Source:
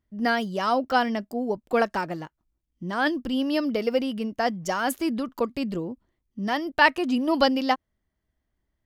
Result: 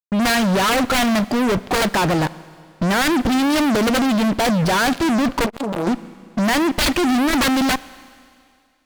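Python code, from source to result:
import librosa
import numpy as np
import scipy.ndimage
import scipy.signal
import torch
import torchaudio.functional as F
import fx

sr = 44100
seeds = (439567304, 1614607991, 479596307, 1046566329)

y = (np.mod(10.0 ** (15.5 / 20.0) * x + 1.0, 2.0) - 1.0) / 10.0 ** (15.5 / 20.0)
y = scipy.signal.sosfilt(scipy.signal.ellip(4, 1.0, 40, 4600.0, 'lowpass', fs=sr, output='sos'), y)
y = fx.low_shelf(y, sr, hz=110.0, db=10.5)
y = fx.fuzz(y, sr, gain_db=44.0, gate_db=-51.0)
y = fx.rev_schroeder(y, sr, rt60_s=2.3, comb_ms=32, drr_db=18.5)
y = fx.transformer_sat(y, sr, knee_hz=610.0, at=(5.46, 5.87))
y = y * librosa.db_to_amplitude(-3.0)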